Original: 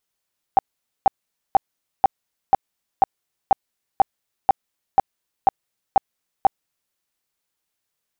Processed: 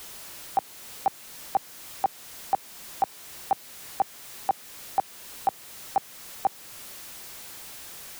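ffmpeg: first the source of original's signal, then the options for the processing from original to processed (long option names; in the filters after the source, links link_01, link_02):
-f lavfi -i "aevalsrc='0.376*sin(2*PI*781*mod(t,0.49))*lt(mod(t,0.49),14/781)':duration=6.37:sample_rate=44100"
-filter_complex "[0:a]aeval=exprs='val(0)+0.5*0.0158*sgn(val(0))':channel_layout=same,acrossover=split=110|390[link_01][link_02][link_03];[link_01]acompressor=threshold=-53dB:ratio=6[link_04];[link_04][link_02][link_03]amix=inputs=3:normalize=0,alimiter=limit=-14.5dB:level=0:latency=1:release=353"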